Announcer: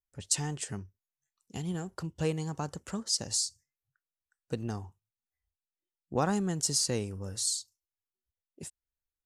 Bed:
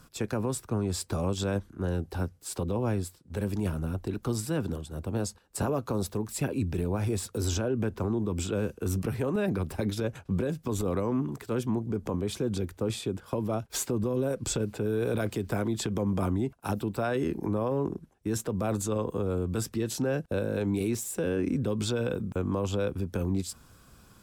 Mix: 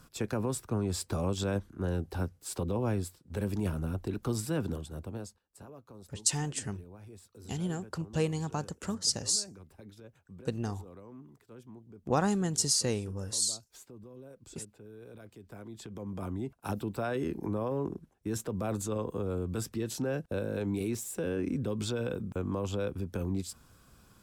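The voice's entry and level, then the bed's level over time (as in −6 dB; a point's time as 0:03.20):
5.95 s, +1.0 dB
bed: 0:04.89 −2 dB
0:05.59 −21 dB
0:15.30 −21 dB
0:16.67 −4 dB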